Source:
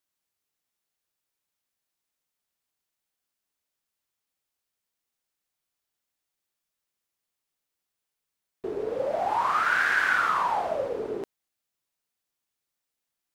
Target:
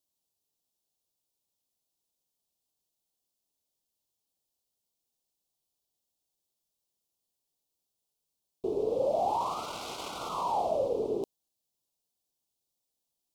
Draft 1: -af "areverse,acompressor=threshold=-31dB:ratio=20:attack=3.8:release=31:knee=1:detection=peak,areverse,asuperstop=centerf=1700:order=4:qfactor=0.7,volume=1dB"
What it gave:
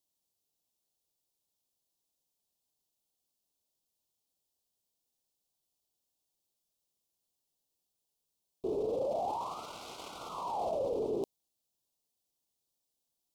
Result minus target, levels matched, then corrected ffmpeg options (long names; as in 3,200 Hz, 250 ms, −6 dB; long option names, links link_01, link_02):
downward compressor: peak gain reduction +7 dB
-af "areverse,acompressor=threshold=-23.5dB:ratio=20:attack=3.8:release=31:knee=1:detection=peak,areverse,asuperstop=centerf=1700:order=4:qfactor=0.7,volume=1dB"